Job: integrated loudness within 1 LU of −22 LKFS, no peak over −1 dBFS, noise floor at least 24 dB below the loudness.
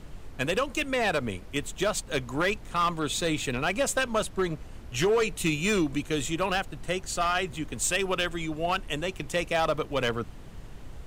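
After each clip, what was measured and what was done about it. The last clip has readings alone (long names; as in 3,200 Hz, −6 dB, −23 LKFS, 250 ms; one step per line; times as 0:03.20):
share of clipped samples 1.0%; peaks flattened at −19.0 dBFS; background noise floor −44 dBFS; target noise floor −53 dBFS; integrated loudness −28.5 LKFS; sample peak −19.0 dBFS; target loudness −22.0 LKFS
→ clipped peaks rebuilt −19 dBFS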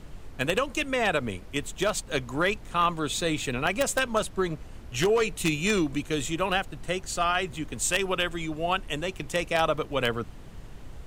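share of clipped samples 0.0%; background noise floor −44 dBFS; target noise floor −52 dBFS
→ noise reduction from a noise print 8 dB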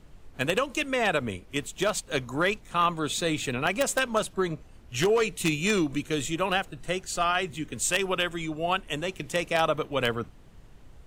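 background noise floor −51 dBFS; target noise floor −52 dBFS
→ noise reduction from a noise print 6 dB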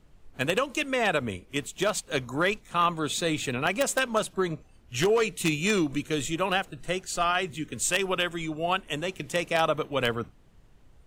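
background noise floor −56 dBFS; integrated loudness −27.5 LKFS; sample peak −10.0 dBFS; target loudness −22.0 LKFS
→ level +5.5 dB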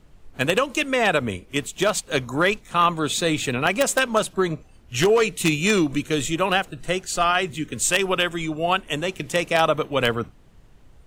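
integrated loudness −22.0 LKFS; sample peak −4.5 dBFS; background noise floor −51 dBFS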